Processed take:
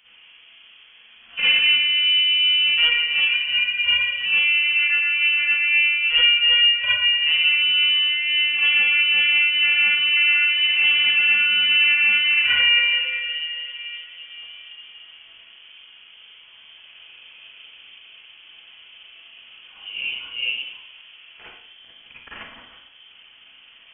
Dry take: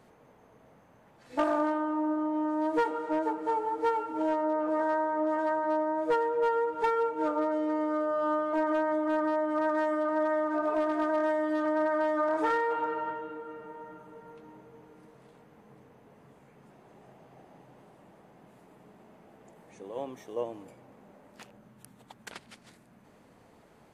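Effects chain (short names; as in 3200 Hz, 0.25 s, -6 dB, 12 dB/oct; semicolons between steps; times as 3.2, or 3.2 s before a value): Schroeder reverb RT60 0.64 s, DRR -9 dB; inverted band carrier 3300 Hz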